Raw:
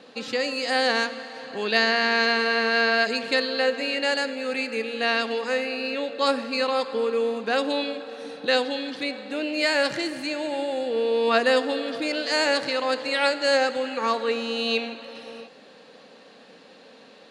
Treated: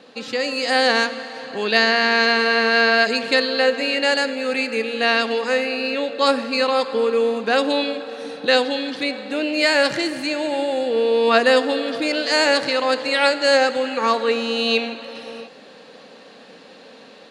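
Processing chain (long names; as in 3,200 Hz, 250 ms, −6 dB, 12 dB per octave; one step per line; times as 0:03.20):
automatic gain control gain up to 4 dB
level +1.5 dB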